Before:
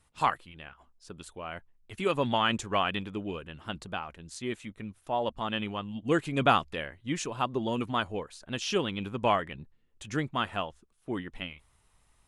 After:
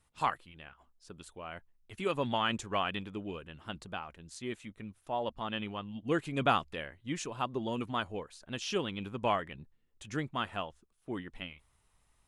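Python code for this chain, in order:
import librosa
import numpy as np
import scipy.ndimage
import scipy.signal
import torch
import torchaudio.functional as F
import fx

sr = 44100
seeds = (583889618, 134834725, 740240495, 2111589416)

y = fx.peak_eq(x, sr, hz=7800.0, db=-10.0, octaves=0.27, at=(5.22, 6.18))
y = F.gain(torch.from_numpy(y), -4.5).numpy()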